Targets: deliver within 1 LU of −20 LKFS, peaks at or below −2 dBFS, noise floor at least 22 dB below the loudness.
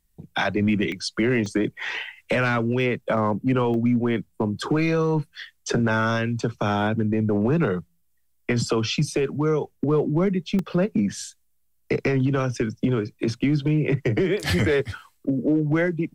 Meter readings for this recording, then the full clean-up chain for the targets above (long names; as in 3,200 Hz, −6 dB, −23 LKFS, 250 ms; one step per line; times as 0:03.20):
share of clipped samples 0.6%; peaks flattened at −14.5 dBFS; number of dropouts 4; longest dropout 2.3 ms; integrated loudness −23.5 LKFS; sample peak −14.5 dBFS; target loudness −20.0 LKFS
→ clipped peaks rebuilt −14.5 dBFS
repair the gap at 0:00.92/0:01.46/0:03.74/0:10.59, 2.3 ms
level +3.5 dB